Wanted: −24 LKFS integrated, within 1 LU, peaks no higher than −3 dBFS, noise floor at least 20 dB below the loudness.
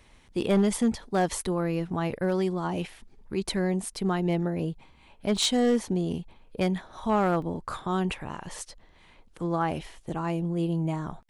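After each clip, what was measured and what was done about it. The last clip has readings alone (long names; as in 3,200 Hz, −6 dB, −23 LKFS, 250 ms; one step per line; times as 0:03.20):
share of clipped samples 0.4%; peaks flattened at −16.5 dBFS; number of dropouts 3; longest dropout 2.5 ms; integrated loudness −28.5 LKFS; sample peak −16.5 dBFS; target loudness −24.0 LKFS
→ clipped peaks rebuilt −16.5 dBFS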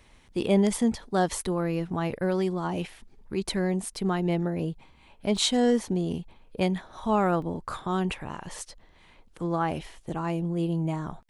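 share of clipped samples 0.0%; number of dropouts 3; longest dropout 2.5 ms
→ repair the gap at 0:05.37/0:07.42/0:08.59, 2.5 ms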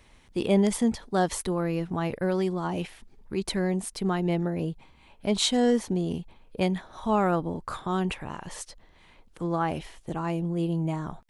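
number of dropouts 0; integrated loudness −28.0 LKFS; sample peak −10.0 dBFS; target loudness −24.0 LKFS
→ level +4 dB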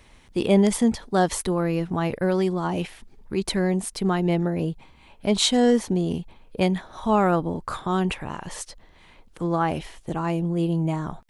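integrated loudness −24.0 LKFS; sample peak −6.0 dBFS; background noise floor −53 dBFS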